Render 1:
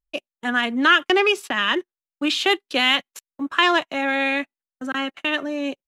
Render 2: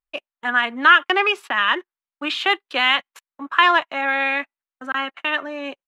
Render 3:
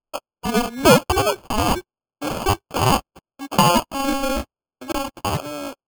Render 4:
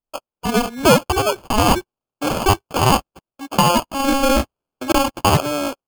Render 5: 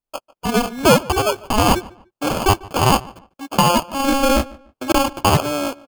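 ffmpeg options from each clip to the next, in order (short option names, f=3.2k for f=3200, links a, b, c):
-af "firequalizer=gain_entry='entry(200,0);entry(1000,14);entry(5800,-1)':delay=0.05:min_phase=1,volume=-8.5dB"
-af "acrusher=samples=23:mix=1:aa=0.000001"
-af "dynaudnorm=f=150:g=5:m=11dB,volume=-1dB"
-filter_complex "[0:a]asplit=2[a][b];[b]adelay=147,lowpass=f=2.8k:p=1,volume=-21.5dB,asplit=2[c][d];[d]adelay=147,lowpass=f=2.8k:p=1,volume=0.28[e];[a][c][e]amix=inputs=3:normalize=0"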